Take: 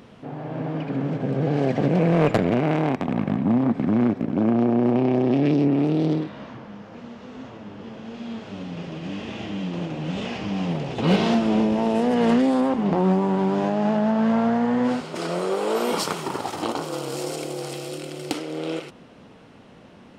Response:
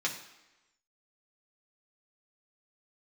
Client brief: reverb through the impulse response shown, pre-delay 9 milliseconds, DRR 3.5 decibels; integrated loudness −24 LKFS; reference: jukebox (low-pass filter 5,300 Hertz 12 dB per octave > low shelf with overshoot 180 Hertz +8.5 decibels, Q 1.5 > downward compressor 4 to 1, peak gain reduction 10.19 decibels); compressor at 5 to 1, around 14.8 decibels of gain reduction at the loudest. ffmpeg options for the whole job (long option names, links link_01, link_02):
-filter_complex "[0:a]acompressor=threshold=-33dB:ratio=5,asplit=2[link_01][link_02];[1:a]atrim=start_sample=2205,adelay=9[link_03];[link_02][link_03]afir=irnorm=-1:irlink=0,volume=-9.5dB[link_04];[link_01][link_04]amix=inputs=2:normalize=0,lowpass=5300,lowshelf=frequency=180:width_type=q:width=1.5:gain=8.5,acompressor=threshold=-34dB:ratio=4,volume=14dB"